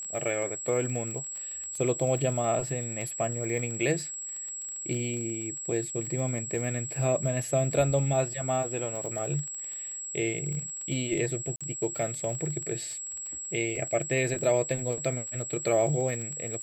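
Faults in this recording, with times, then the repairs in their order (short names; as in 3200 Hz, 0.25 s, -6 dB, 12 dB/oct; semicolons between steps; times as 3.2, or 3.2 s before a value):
crackle 30/s -34 dBFS
tone 7700 Hz -35 dBFS
11.56–11.61 gap 46 ms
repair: de-click; notch 7700 Hz, Q 30; interpolate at 11.56, 46 ms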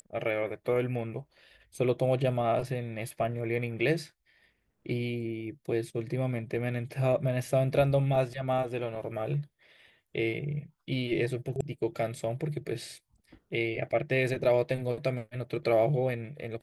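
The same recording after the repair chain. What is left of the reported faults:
none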